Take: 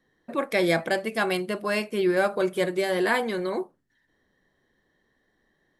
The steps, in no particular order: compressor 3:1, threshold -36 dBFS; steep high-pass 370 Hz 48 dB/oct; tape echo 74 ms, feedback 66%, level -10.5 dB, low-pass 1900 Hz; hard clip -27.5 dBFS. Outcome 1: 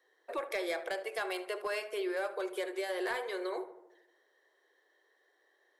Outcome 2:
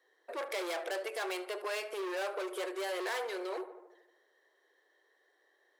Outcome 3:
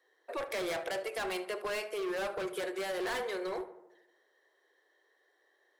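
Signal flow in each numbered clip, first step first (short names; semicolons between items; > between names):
steep high-pass > compressor > tape echo > hard clip; tape echo > hard clip > compressor > steep high-pass; steep high-pass > hard clip > compressor > tape echo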